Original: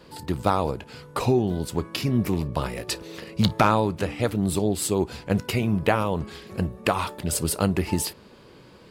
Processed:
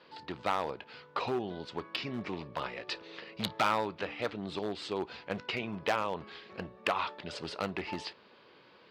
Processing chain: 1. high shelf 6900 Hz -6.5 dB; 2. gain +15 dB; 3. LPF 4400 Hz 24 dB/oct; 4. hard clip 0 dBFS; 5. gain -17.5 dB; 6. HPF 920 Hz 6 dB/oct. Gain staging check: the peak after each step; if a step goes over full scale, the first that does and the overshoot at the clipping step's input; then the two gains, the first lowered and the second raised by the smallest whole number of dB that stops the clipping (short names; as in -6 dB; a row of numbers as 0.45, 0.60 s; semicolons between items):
-6.5, +8.5, +9.0, 0.0, -17.5, -13.5 dBFS; step 2, 9.0 dB; step 2 +6 dB, step 5 -8.5 dB